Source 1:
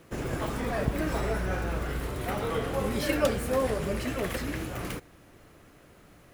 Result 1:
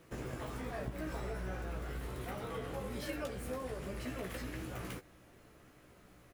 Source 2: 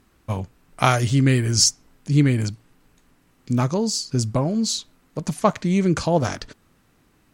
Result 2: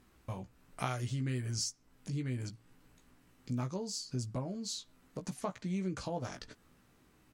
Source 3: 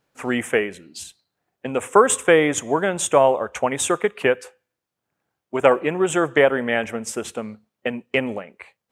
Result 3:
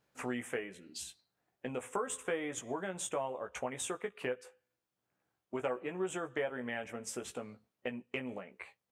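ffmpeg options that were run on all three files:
ffmpeg -i in.wav -filter_complex "[0:a]acompressor=threshold=-35dB:ratio=2.5,asplit=2[link_01][link_02];[link_02]adelay=16,volume=-6dB[link_03];[link_01][link_03]amix=inputs=2:normalize=0,volume=-6.5dB" out.wav

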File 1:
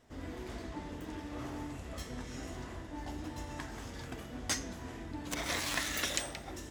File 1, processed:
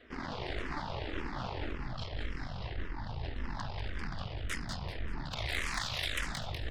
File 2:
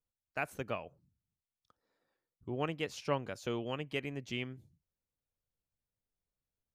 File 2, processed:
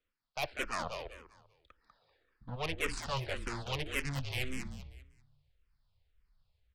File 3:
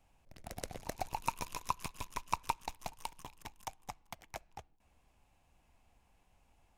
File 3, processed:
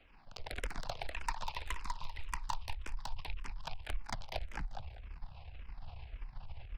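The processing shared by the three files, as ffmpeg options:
ffmpeg -i in.wav -filter_complex "[0:a]acrossover=split=730|3900[link_01][link_02][link_03];[link_01]asoftclip=type=tanh:threshold=-35.5dB[link_04];[link_04][link_02][link_03]amix=inputs=3:normalize=0,asubboost=boost=10:cutoff=91,areverse,acompressor=threshold=-45dB:ratio=6,areverse,aresample=11025,aresample=44100,aeval=exprs='0.0188*(cos(1*acos(clip(val(0)/0.0188,-1,1)))-cos(1*PI/2))+0.00596*(cos(6*acos(clip(val(0)/0.0188,-1,1)))-cos(6*PI/2))':channel_layout=same,lowshelf=frequency=470:gain=-7,asplit=5[link_05][link_06][link_07][link_08][link_09];[link_06]adelay=195,afreqshift=-36,volume=-6dB[link_10];[link_07]adelay=390,afreqshift=-72,volume=-16.2dB[link_11];[link_08]adelay=585,afreqshift=-108,volume=-26.3dB[link_12];[link_09]adelay=780,afreqshift=-144,volume=-36.5dB[link_13];[link_05][link_10][link_11][link_12][link_13]amix=inputs=5:normalize=0,asplit=2[link_14][link_15];[link_15]afreqshift=-1.8[link_16];[link_14][link_16]amix=inputs=2:normalize=1,volume=14dB" out.wav

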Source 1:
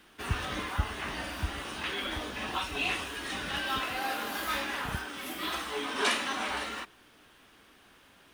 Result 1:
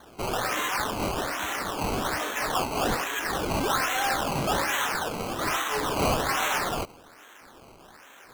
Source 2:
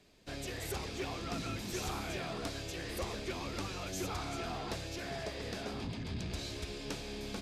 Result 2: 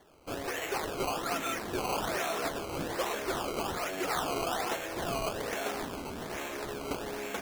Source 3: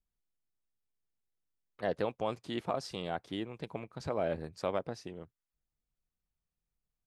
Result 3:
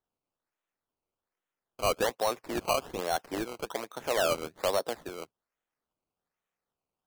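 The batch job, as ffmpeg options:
ffmpeg -i in.wav -filter_complex "[0:a]acrossover=split=230 3300:gain=0.224 1 0.0631[link_01][link_02][link_03];[link_01][link_02][link_03]amix=inputs=3:normalize=0,asplit=2[link_04][link_05];[link_05]highpass=frequency=720:poles=1,volume=18dB,asoftclip=type=tanh:threshold=-16dB[link_06];[link_04][link_06]amix=inputs=2:normalize=0,lowpass=frequency=4900:poles=1,volume=-6dB,acrusher=samples=17:mix=1:aa=0.000001:lfo=1:lforange=17:lforate=1.2" out.wav

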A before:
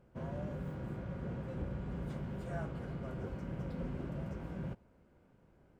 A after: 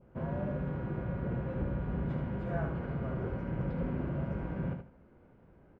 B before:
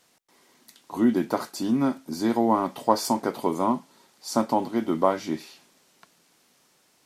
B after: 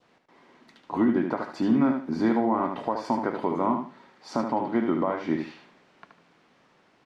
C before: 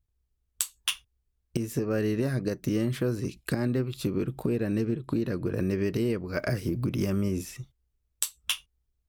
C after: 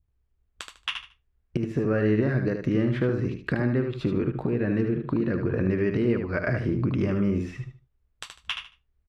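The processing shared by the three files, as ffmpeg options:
ffmpeg -i in.wav -filter_complex "[0:a]lowpass=2300,adynamicequalizer=threshold=0.00447:dfrequency=1800:dqfactor=1.6:tfrequency=1800:tqfactor=1.6:attack=5:release=100:ratio=0.375:range=2.5:mode=boostabove:tftype=bell,asplit=2[link_01][link_02];[link_02]acompressor=threshold=-31dB:ratio=6,volume=-2.5dB[link_03];[link_01][link_03]amix=inputs=2:normalize=0,alimiter=limit=-14dB:level=0:latency=1:release=244,aecho=1:1:75|150|225:0.473|0.109|0.025" out.wav

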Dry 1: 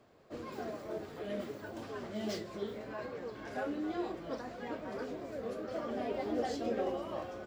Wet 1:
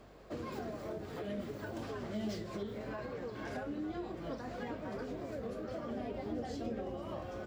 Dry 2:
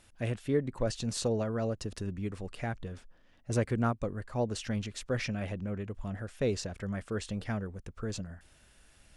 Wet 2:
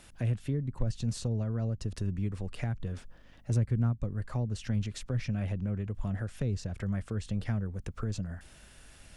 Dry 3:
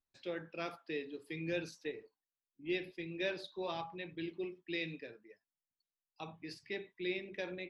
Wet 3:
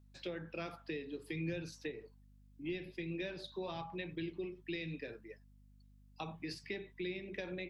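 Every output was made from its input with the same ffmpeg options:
ffmpeg -i in.wav -filter_complex "[0:a]acrossover=split=180[link_01][link_02];[link_02]acompressor=threshold=-46dB:ratio=10[link_03];[link_01][link_03]amix=inputs=2:normalize=0,aeval=exprs='val(0)+0.000398*(sin(2*PI*50*n/s)+sin(2*PI*2*50*n/s)/2+sin(2*PI*3*50*n/s)/3+sin(2*PI*4*50*n/s)/4+sin(2*PI*5*50*n/s)/5)':channel_layout=same,volume=6.5dB" out.wav

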